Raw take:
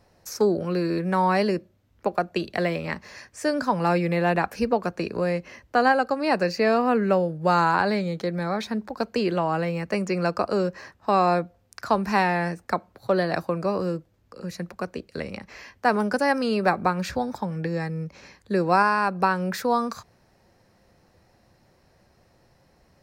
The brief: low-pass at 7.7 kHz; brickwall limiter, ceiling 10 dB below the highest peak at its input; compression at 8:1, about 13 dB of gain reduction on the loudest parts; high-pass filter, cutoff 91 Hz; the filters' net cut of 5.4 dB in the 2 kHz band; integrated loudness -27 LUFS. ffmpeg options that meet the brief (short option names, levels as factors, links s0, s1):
-af "highpass=91,lowpass=7700,equalizer=f=2000:t=o:g=-7.5,acompressor=threshold=0.0316:ratio=8,volume=3.16,alimiter=limit=0.15:level=0:latency=1"